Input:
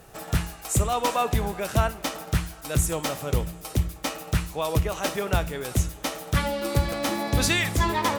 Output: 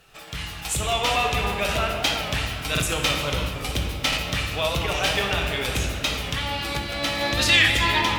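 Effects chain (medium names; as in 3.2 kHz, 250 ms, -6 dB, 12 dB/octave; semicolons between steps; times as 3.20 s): 6.00–7.21 s: compression, threshold -28 dBFS, peak gain reduction 11.5 dB; flange 0.34 Hz, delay 0.7 ms, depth 1 ms, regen +72%; peak limiter -22 dBFS, peak gain reduction 9.5 dB; level rider gain up to 9 dB; peaking EQ 3 kHz +15 dB 1.8 oct; simulated room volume 140 m³, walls hard, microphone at 0.4 m; buffer glitch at 2.73/4.08 s, samples 2048, times 1; warped record 45 rpm, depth 100 cents; trim -6.5 dB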